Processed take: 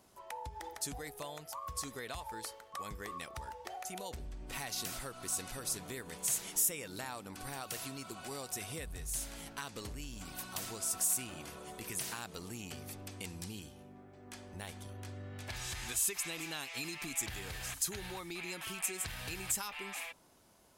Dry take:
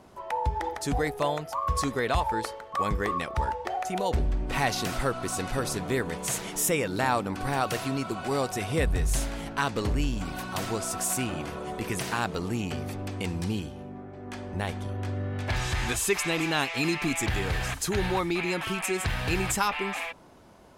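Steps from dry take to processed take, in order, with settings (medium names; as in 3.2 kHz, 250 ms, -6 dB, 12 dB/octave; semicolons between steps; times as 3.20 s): compression, threshold -27 dBFS, peak gain reduction 7.5 dB; pre-emphasis filter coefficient 0.8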